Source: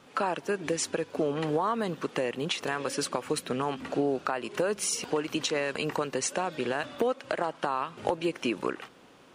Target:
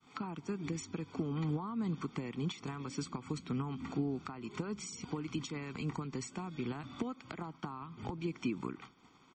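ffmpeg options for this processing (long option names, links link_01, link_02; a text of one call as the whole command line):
ffmpeg -i in.wav -filter_complex "[0:a]aecho=1:1:0.9:0.79,acrossover=split=270[link_01][link_02];[link_02]acompressor=threshold=-42dB:ratio=6[link_03];[link_01][link_03]amix=inputs=2:normalize=0,agate=range=-33dB:threshold=-47dB:ratio=3:detection=peak,volume=-1.5dB" -ar 48000 -c:a libmp3lame -b:a 32k out.mp3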